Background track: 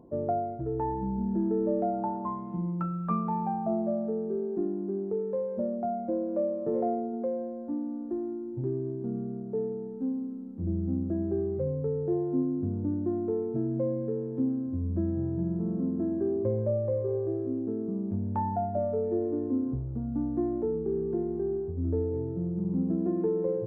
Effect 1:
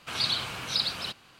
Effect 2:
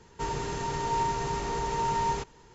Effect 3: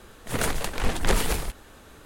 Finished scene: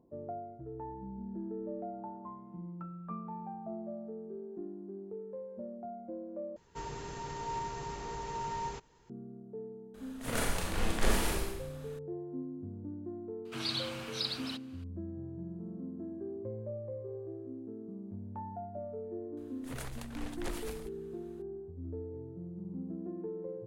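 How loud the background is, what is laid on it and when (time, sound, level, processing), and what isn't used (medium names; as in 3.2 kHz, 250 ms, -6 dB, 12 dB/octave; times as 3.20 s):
background track -12.5 dB
6.56 s: replace with 2 -9.5 dB
9.94 s: add 3 -10.5 dB + Schroeder reverb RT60 0.85 s, combs from 27 ms, DRR -2.5 dB
13.45 s: add 1 -8 dB
19.37 s: add 3 -17.5 dB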